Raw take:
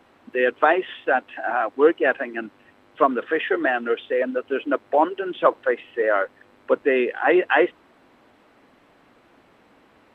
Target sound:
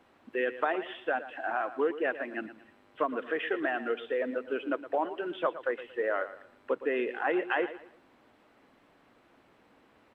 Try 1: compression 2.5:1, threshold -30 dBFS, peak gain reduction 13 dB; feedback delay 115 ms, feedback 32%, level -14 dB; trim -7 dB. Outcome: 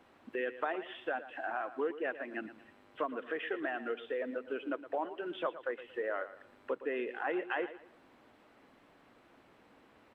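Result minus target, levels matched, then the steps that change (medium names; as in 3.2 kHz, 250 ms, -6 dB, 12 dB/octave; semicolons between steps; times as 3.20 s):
compression: peak gain reduction +6 dB
change: compression 2.5:1, threshold -20 dBFS, peak gain reduction 7 dB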